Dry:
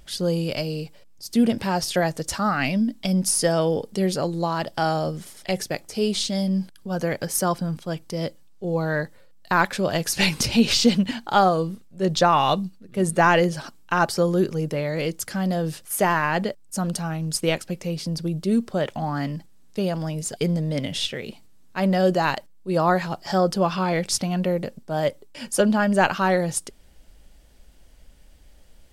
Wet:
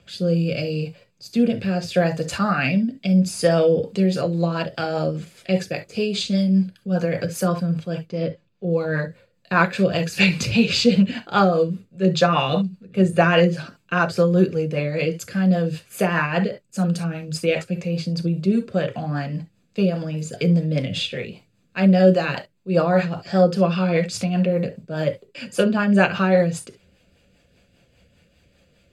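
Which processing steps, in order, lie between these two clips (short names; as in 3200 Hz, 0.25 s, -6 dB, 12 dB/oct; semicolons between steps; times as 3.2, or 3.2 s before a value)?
8.04–8.7 air absorption 130 m; reverb, pre-delay 3 ms, DRR 6 dB; rotary speaker horn 0.75 Hz, later 5 Hz, at 3.32; gain -5.5 dB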